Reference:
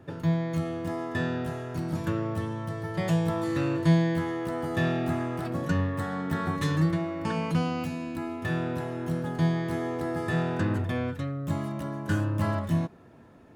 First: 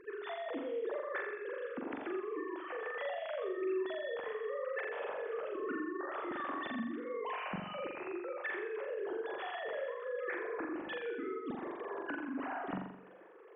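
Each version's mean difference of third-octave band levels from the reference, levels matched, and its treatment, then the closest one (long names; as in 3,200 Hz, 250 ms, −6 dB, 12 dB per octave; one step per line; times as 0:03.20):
13.0 dB: three sine waves on the formant tracks
downward compressor, threshold −34 dBFS, peak gain reduction 17 dB
on a send: flutter between parallel walls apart 7.3 metres, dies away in 0.74 s
on the sum: level −5.5 dB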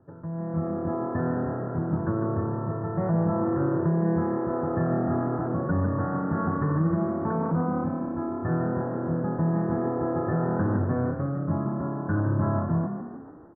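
8.5 dB: Butterworth low-pass 1,500 Hz 48 dB per octave
brickwall limiter −20.5 dBFS, peak gain reduction 8.5 dB
automatic gain control gain up to 11 dB
echo with shifted repeats 148 ms, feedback 50%, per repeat +35 Hz, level −8.5 dB
level −8 dB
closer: second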